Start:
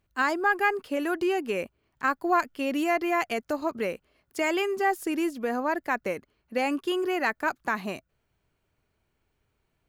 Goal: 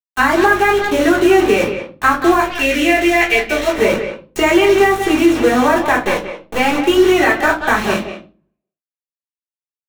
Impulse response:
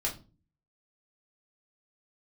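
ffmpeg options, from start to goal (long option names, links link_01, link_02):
-filter_complex "[0:a]asettb=1/sr,asplit=3[link_01][link_02][link_03];[link_01]atrim=end=6.054[link_04];[link_02]atrim=start=6.05:end=6.8,asetpts=PTS-STARTPTS,afade=type=in:duration=0.004:curve=qsin,afade=type=out:start_time=0.746:duration=0.004:curve=qsin,aeval=exprs='if(lt(val(0),0),0.251*val(0),val(0))':channel_layout=same[link_05];[link_03]atrim=start=6.796[link_06];[link_04][link_05]acrossfade=duration=0.004:curve1=hsin:curve2=qsin[link_07];[link_07][link_06]acrossfade=duration=0.004:curve1=qsin:curve2=hsin,aeval=exprs='val(0)+0.00708*(sin(2*PI*50*n/s)+sin(2*PI*2*50*n/s)/2+sin(2*PI*3*50*n/s)/3+sin(2*PI*4*50*n/s)/4+sin(2*PI*5*50*n/s)/5)':channel_layout=same,acrusher=bits=5:mix=0:aa=0.000001,equalizer=frequency=4800:width=6.9:gain=-11.5,asplit=2[link_08][link_09];[link_09]adelay=180,highpass=300,lowpass=3400,asoftclip=type=hard:threshold=-21.5dB,volume=-9dB[link_10];[link_08][link_10]amix=inputs=2:normalize=0,agate=range=-28dB:threshold=-51dB:ratio=16:detection=peak,asettb=1/sr,asplit=3[link_11][link_12][link_13];[link_11]atrim=end=2.424[link_14];[link_12]atrim=start=2.42:end=3.78,asetpts=PTS-STARTPTS,afade=type=in:duration=0.004:curve=qsin,afade=type=out:start_time=1.356:duration=0.004:curve=qsin,equalizer=frequency=125:width_type=o:width=1:gain=-11,equalizer=frequency=250:width_type=o:width=1:gain=-6,equalizer=frequency=1000:width_type=o:width=1:gain=-11,equalizer=frequency=2000:width_type=o:width=1:gain=6[link_15];[link_13]atrim=start=3.776[link_16];[link_14][link_15]acrossfade=duration=0.004:curve1=hsin:curve2=qsin[link_17];[link_17][link_16]acrossfade=duration=0.004:curve1=qsin:curve2=hsin,acrossover=split=160|7000[link_18][link_19][link_20];[link_18]acompressor=threshold=-54dB:ratio=4[link_21];[link_19]acompressor=threshold=-24dB:ratio=4[link_22];[link_20]acompressor=threshold=-53dB:ratio=4[link_23];[link_21][link_22][link_23]amix=inputs=3:normalize=0[link_24];[1:a]atrim=start_sample=2205,asetrate=43218,aresample=44100[link_25];[link_24][link_25]afir=irnorm=-1:irlink=0,alimiter=level_in=13dB:limit=-1dB:release=50:level=0:latency=1,volume=-1dB"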